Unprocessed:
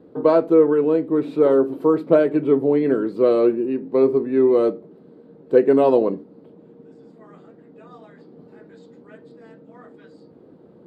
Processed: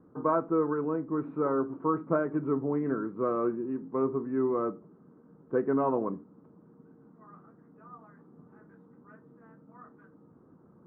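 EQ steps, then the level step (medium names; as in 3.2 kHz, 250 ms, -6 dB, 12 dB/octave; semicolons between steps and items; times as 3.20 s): four-pole ladder low-pass 1.4 kHz, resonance 55%; distance through air 310 m; peaking EQ 520 Hz -12.5 dB 1.8 oct; +7.0 dB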